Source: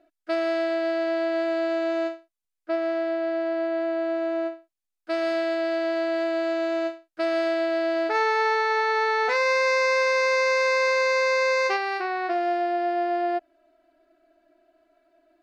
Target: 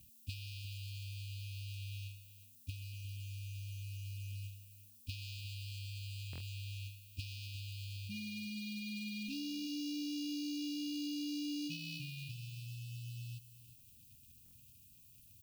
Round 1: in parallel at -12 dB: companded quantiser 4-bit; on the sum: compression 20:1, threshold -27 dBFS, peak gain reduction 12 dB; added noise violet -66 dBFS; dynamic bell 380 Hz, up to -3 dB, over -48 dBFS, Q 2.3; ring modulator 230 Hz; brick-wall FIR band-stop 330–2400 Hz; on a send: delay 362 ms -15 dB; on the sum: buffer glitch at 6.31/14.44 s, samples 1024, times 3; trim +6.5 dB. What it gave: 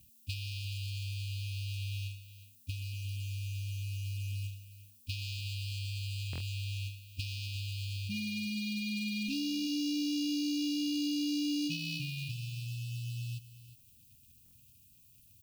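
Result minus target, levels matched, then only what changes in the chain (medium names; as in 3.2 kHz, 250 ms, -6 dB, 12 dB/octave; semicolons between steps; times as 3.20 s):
compression: peak gain reduction -7 dB
change: compression 20:1, threshold -34.5 dBFS, peak gain reduction 19 dB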